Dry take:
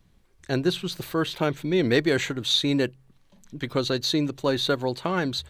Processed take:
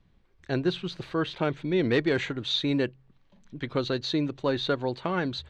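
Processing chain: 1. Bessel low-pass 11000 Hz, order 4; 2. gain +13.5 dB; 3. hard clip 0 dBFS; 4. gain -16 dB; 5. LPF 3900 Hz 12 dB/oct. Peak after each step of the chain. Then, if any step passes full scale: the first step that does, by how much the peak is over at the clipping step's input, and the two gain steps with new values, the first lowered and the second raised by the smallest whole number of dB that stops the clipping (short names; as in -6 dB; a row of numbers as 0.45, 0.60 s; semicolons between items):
-8.5, +5.0, 0.0, -16.0, -15.5 dBFS; step 2, 5.0 dB; step 2 +8.5 dB, step 4 -11 dB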